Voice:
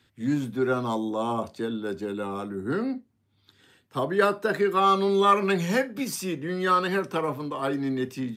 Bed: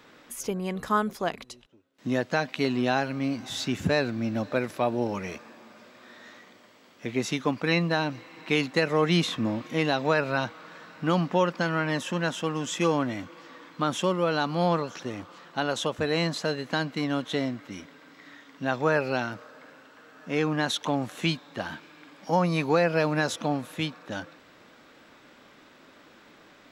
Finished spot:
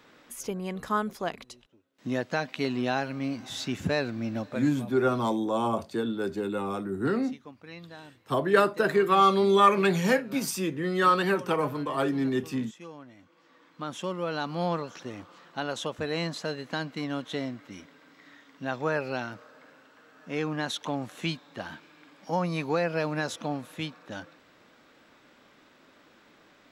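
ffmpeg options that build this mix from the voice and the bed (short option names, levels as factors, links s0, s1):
-filter_complex "[0:a]adelay=4350,volume=1.06[s0];[1:a]volume=4.47,afade=t=out:st=4.37:d=0.36:silence=0.133352,afade=t=in:st=13.17:d=1.35:silence=0.158489[s1];[s0][s1]amix=inputs=2:normalize=0"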